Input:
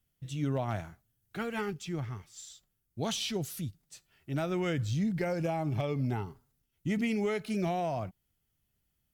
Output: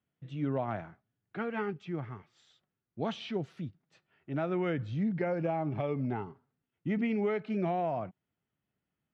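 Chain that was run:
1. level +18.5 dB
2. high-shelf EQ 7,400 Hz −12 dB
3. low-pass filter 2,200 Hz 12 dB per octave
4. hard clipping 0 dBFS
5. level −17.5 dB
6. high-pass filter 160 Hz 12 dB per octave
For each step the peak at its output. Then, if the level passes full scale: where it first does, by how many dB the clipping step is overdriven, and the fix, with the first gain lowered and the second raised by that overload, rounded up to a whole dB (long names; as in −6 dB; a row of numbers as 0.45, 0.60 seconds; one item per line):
−1.5, −2.0, −2.0, −2.0, −19.5, −19.0 dBFS
no step passes full scale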